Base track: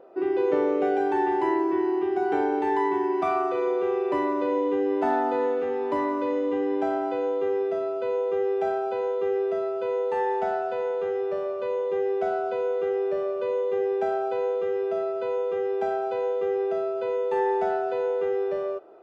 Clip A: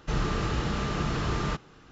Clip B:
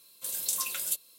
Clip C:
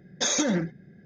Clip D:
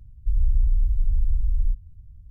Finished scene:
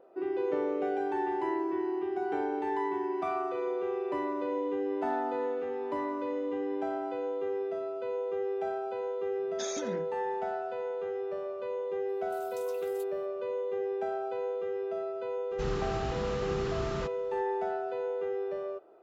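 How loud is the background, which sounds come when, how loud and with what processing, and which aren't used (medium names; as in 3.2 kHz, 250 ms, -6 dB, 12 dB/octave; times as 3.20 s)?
base track -7.5 dB
9.38 s: add C -14 dB
12.08 s: add B -15.5 dB + peaking EQ 9.9 kHz -11 dB 1.6 oct
15.51 s: add A -7 dB
not used: D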